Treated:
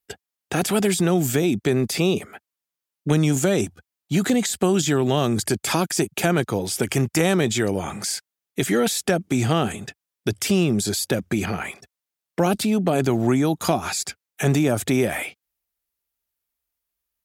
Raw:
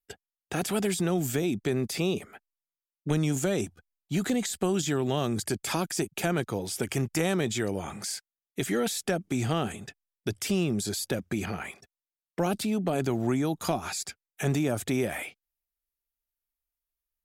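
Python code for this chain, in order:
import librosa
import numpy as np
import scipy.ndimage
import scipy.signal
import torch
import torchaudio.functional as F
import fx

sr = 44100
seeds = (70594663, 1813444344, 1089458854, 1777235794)

y = scipy.signal.sosfilt(scipy.signal.butter(2, 55.0, 'highpass', fs=sr, output='sos'), x)
y = F.gain(torch.from_numpy(y), 7.5).numpy()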